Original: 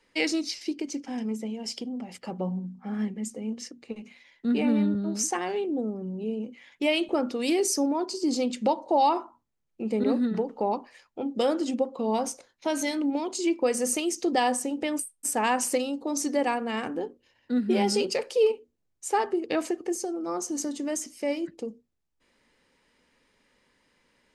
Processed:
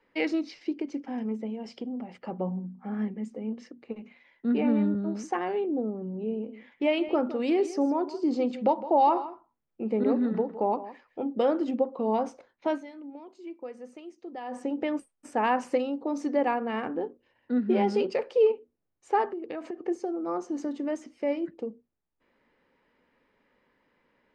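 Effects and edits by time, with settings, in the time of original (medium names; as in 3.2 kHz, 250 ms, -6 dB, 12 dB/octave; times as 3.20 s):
5.99–11.32 s: delay 161 ms -15 dB
12.74–14.57 s: dip -15.5 dB, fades 0.39 s exponential
19.26–19.80 s: compression, threshold -32 dBFS
whole clip: Bessel low-pass 1.6 kHz, order 2; bass shelf 150 Hz -7.5 dB; trim +1.5 dB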